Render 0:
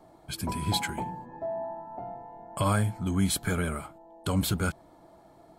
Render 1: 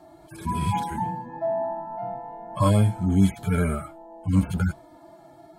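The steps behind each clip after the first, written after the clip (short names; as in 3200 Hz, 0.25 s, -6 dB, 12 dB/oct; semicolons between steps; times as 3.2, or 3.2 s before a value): median-filter separation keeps harmonic; gain +7.5 dB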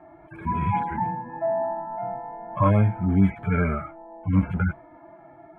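EQ curve 470 Hz 0 dB, 2200 Hz +5 dB, 4500 Hz -30 dB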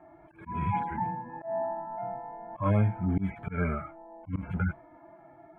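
auto swell 0.138 s; gain -5 dB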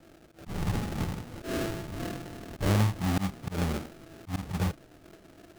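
sample-rate reducer 1000 Hz, jitter 20%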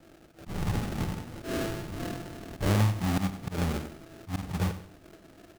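feedback echo 94 ms, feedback 33%, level -12.5 dB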